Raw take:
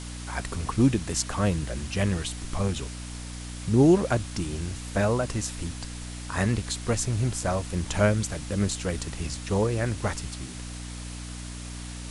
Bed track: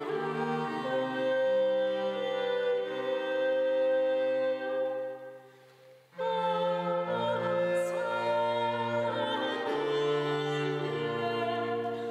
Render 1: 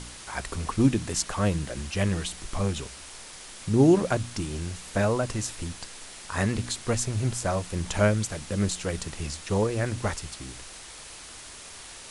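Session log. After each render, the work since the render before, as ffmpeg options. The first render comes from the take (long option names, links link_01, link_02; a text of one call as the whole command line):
ffmpeg -i in.wav -af "bandreject=frequency=60:width_type=h:width=4,bandreject=frequency=120:width_type=h:width=4,bandreject=frequency=180:width_type=h:width=4,bandreject=frequency=240:width_type=h:width=4,bandreject=frequency=300:width_type=h:width=4" out.wav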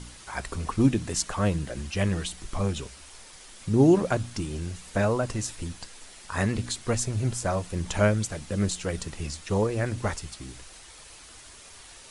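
ffmpeg -i in.wav -af "afftdn=noise_reduction=6:noise_floor=-44" out.wav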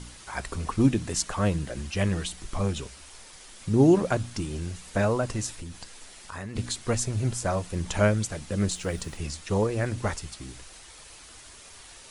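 ffmpeg -i in.wav -filter_complex "[0:a]asplit=3[link_01][link_02][link_03];[link_01]afade=type=out:start_time=5.55:duration=0.02[link_04];[link_02]acompressor=threshold=-36dB:ratio=3:attack=3.2:release=140:knee=1:detection=peak,afade=type=in:start_time=5.55:duration=0.02,afade=type=out:start_time=6.55:duration=0.02[link_05];[link_03]afade=type=in:start_time=6.55:duration=0.02[link_06];[link_04][link_05][link_06]amix=inputs=3:normalize=0,asettb=1/sr,asplit=3[link_07][link_08][link_09];[link_07]atrim=end=8.714[link_10];[link_08]atrim=start=8.71:end=9.17,asetpts=PTS-STARTPTS,afade=type=in:duration=0.004:curve=qsin,afade=type=out:start_time=0.456:duration=0.004:curve=qsin,acrusher=bits=8:mix=0:aa=0.5[link_11];[link_09]atrim=start=9.166[link_12];[link_10][link_11]acrossfade=duration=0.004:curve1=hsin:curve2=qsin[link_13];[link_13][link_12]acrossfade=duration=0.004:curve1=qsin:curve2=hsin" out.wav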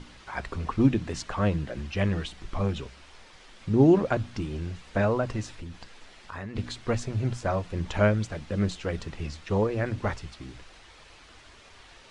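ffmpeg -i in.wav -af "lowpass=3600,bandreject=frequency=60:width_type=h:width=6,bandreject=frequency=120:width_type=h:width=6,bandreject=frequency=180:width_type=h:width=6" out.wav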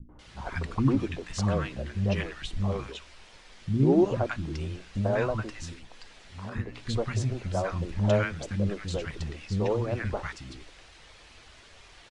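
ffmpeg -i in.wav -filter_complex "[0:a]acrossover=split=270|1100[link_01][link_02][link_03];[link_02]adelay=90[link_04];[link_03]adelay=190[link_05];[link_01][link_04][link_05]amix=inputs=3:normalize=0" out.wav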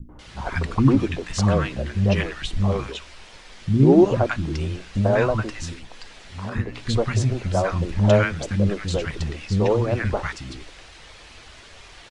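ffmpeg -i in.wav -af "volume=7.5dB" out.wav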